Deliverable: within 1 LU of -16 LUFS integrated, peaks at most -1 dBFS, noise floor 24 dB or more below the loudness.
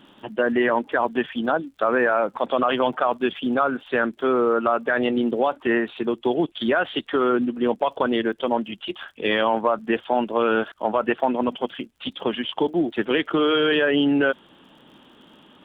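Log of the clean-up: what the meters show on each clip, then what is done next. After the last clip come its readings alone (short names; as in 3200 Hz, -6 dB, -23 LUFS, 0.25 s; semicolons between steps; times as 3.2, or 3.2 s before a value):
ticks 57/s; loudness -22.5 LUFS; peak -8.0 dBFS; loudness target -16.0 LUFS
-> de-click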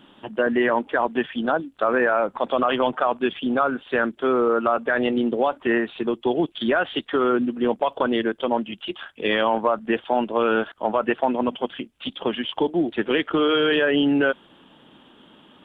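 ticks 0.19/s; loudness -22.5 LUFS; peak -8.0 dBFS; loudness target -16.0 LUFS
-> gain +6.5 dB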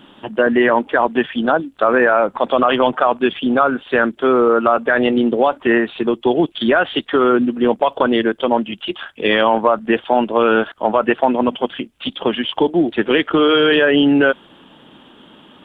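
loudness -16.0 LUFS; peak -1.5 dBFS; noise floor -47 dBFS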